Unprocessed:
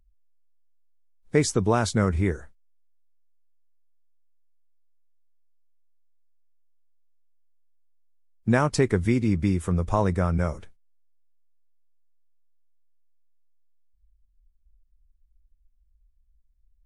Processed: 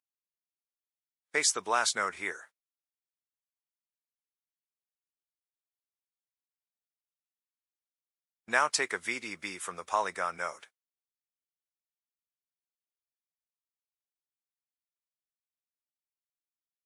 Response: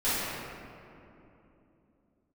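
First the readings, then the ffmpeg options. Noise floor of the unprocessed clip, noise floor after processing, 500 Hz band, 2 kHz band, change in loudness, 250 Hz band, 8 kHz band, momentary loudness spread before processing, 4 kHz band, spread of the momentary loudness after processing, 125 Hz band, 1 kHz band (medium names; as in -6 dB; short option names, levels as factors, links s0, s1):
-64 dBFS, under -85 dBFS, -11.0 dB, +2.5 dB, -6.5 dB, -22.5 dB, +3.0 dB, 6 LU, +3.0 dB, 11 LU, -34.0 dB, -1.0 dB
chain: -af "highpass=1100,agate=range=0.178:threshold=0.00141:ratio=16:detection=peak,volume=1.41"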